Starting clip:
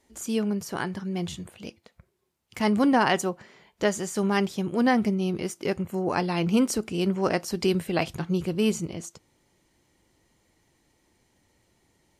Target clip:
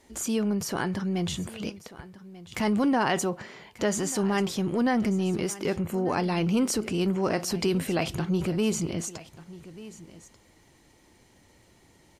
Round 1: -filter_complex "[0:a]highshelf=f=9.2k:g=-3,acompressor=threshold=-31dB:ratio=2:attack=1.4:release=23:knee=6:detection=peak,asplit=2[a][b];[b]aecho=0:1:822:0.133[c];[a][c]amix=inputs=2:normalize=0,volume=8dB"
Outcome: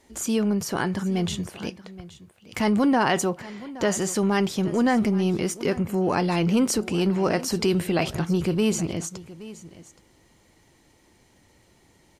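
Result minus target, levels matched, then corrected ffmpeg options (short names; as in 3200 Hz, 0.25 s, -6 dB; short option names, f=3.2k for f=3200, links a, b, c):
echo 0.367 s early; compressor: peak gain reduction -3.5 dB
-filter_complex "[0:a]highshelf=f=9.2k:g=-3,acompressor=threshold=-38dB:ratio=2:attack=1.4:release=23:knee=6:detection=peak,asplit=2[a][b];[b]aecho=0:1:1189:0.133[c];[a][c]amix=inputs=2:normalize=0,volume=8dB"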